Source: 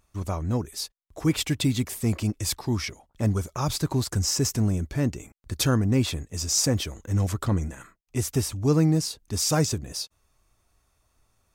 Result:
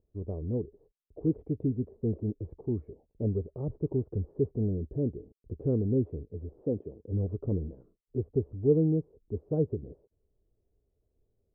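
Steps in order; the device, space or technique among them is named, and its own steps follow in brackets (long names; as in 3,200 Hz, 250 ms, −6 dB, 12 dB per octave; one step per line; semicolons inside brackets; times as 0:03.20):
under water (low-pass filter 530 Hz 24 dB per octave; parametric band 430 Hz +10.5 dB 0.48 octaves)
0:06.62–0:07.11: high-pass filter 190 Hz → 73 Hz
level −6.5 dB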